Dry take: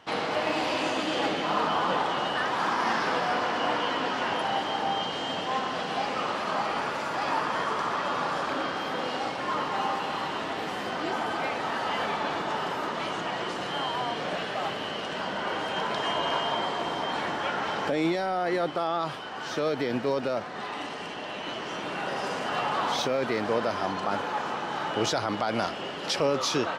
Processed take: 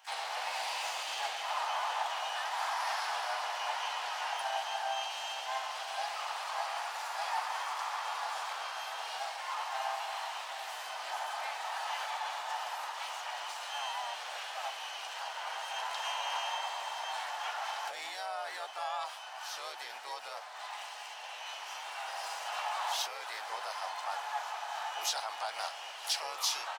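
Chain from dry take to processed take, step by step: resonant high-pass 830 Hz, resonance Q 4.6; differentiator; harmoniser -3 st -6 dB, +12 st -12 dB

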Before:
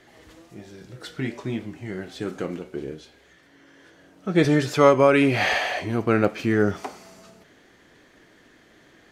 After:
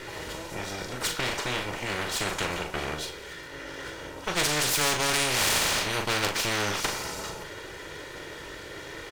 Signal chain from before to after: minimum comb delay 2.1 ms; doubler 40 ms -8 dB; spectral compressor 4:1; gain -6 dB

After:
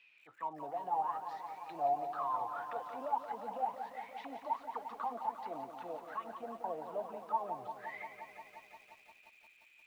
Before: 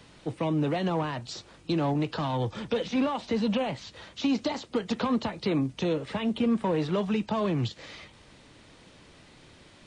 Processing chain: auto-wah 680–2600 Hz, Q 22, down, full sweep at -22.5 dBFS; lo-fi delay 0.175 s, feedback 80%, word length 12-bit, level -9 dB; gain +7.5 dB

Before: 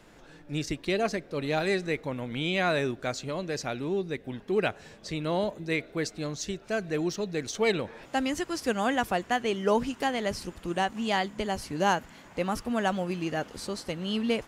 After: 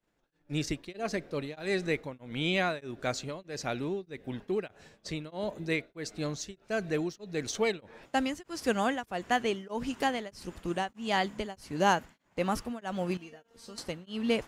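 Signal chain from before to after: expander -41 dBFS; 13.17–13.78 resonator 230 Hz, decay 0.21 s, harmonics all, mix 90%; beating tremolo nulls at 1.6 Hz

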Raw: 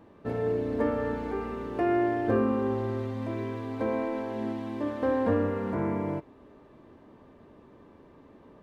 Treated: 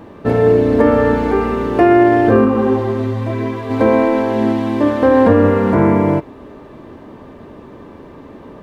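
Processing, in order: maximiser +18 dB; 2.44–3.69 detuned doubles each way 28 cents -> 13 cents; gain -1 dB

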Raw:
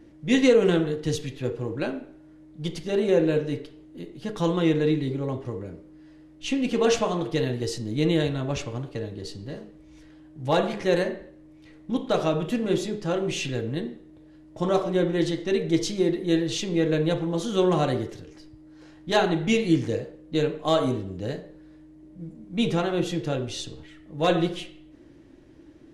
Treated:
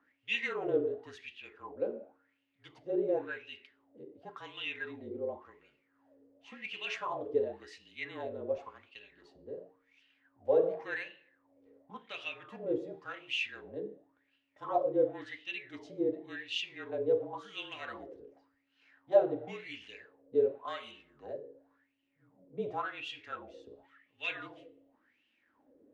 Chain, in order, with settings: wah 0.92 Hz 490–2900 Hz, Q 7.8; frequency shift -35 Hz; de-hum 154.6 Hz, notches 3; gain +3.5 dB

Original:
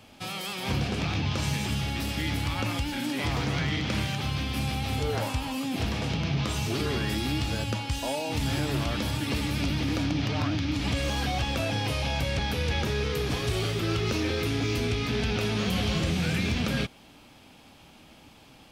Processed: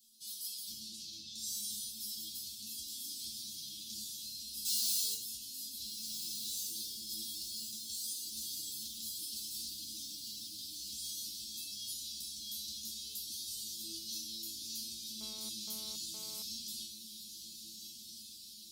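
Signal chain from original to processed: 1.39–1.89 doubler 39 ms -4 dB; 4.65–5.14 overdrive pedal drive 35 dB, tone 6000 Hz, clips at -17 dBFS; elliptic band-stop 280–4100 Hz, stop band 40 dB; pre-emphasis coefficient 0.97; resonator bank A3 fifth, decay 0.3 s; diffused feedback echo 1.511 s, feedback 60%, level -7.5 dB; 15.21–16.42 GSM buzz -75 dBFS; gain +16.5 dB

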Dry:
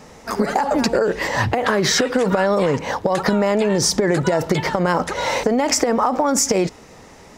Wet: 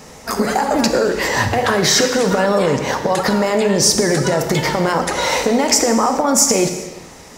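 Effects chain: high shelf 4600 Hz +8.5 dB; in parallel at -1.5 dB: limiter -12.5 dBFS, peak gain reduction 11.5 dB; on the sum: non-linear reverb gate 0.46 s falling, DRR 5.5 dB; gain -3 dB

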